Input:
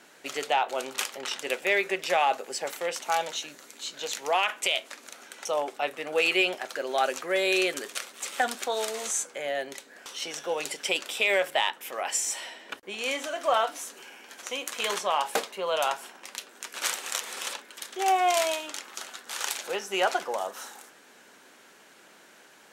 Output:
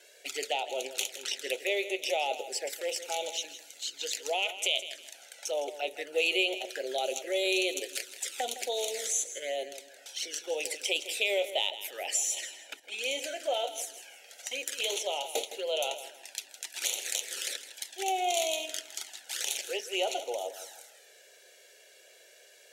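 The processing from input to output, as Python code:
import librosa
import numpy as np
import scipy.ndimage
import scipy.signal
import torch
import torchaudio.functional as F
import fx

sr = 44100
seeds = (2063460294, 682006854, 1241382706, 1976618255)

p1 = scipy.signal.sosfilt(scipy.signal.butter(2, 120.0, 'highpass', fs=sr, output='sos'), x)
p2 = fx.low_shelf(p1, sr, hz=320.0, db=-11.0)
p3 = fx.env_flanger(p2, sr, rest_ms=2.0, full_db=-28.0)
p4 = fx.level_steps(p3, sr, step_db=21)
p5 = p3 + (p4 * 10.0 ** (-0.5 / 20.0))
p6 = fx.fixed_phaser(p5, sr, hz=460.0, stages=4)
y = fx.echo_feedback(p6, sr, ms=161, feedback_pct=29, wet_db=-13.0)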